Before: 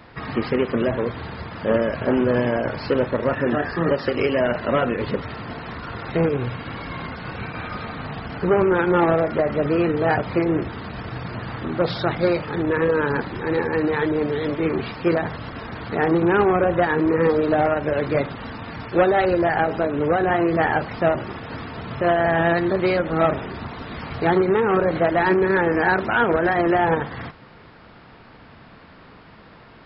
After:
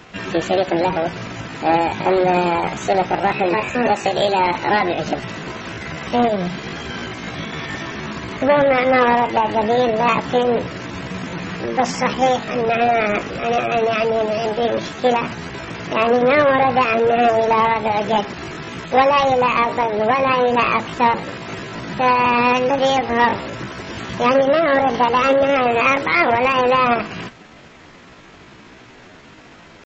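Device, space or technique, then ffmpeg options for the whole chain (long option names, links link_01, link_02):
chipmunk voice: -filter_complex "[0:a]asplit=3[link_01][link_02][link_03];[link_01]afade=type=out:start_time=24.42:duration=0.02[link_04];[link_02]bandreject=frequency=1700:width=8.5,afade=type=in:start_time=24.42:duration=0.02,afade=type=out:start_time=25.67:duration=0.02[link_05];[link_03]afade=type=in:start_time=25.67:duration=0.02[link_06];[link_04][link_05][link_06]amix=inputs=3:normalize=0,asetrate=64194,aresample=44100,atempo=0.686977,volume=3.5dB"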